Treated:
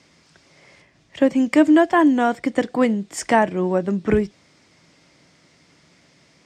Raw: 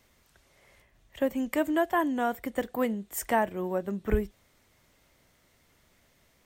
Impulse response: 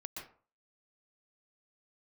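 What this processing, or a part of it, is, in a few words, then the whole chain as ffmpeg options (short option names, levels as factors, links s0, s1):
car door speaker: -af "highpass=110,equalizer=f=160:t=q:w=4:g=9,equalizer=f=300:t=q:w=4:g=7,equalizer=f=2300:t=q:w=4:g=3,equalizer=f=5000:t=q:w=4:g=8,lowpass=f=8000:w=0.5412,lowpass=f=8000:w=1.3066,volume=2.66"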